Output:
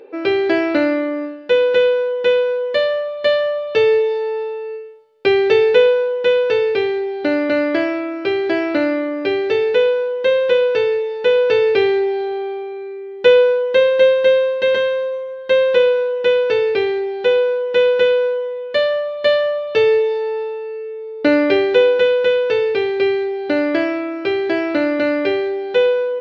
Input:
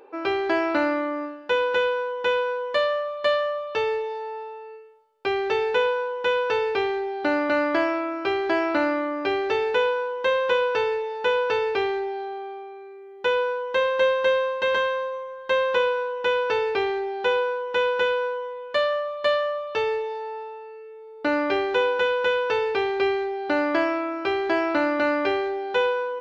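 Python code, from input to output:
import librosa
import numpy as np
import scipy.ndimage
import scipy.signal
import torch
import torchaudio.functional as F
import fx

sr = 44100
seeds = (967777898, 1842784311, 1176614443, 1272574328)

y = fx.rider(x, sr, range_db=10, speed_s=2.0)
y = fx.graphic_eq(y, sr, hz=(125, 250, 500, 1000, 2000, 4000), db=(11, 6, 11, -7, 7, 7))
y = y * librosa.db_to_amplitude(-2.5)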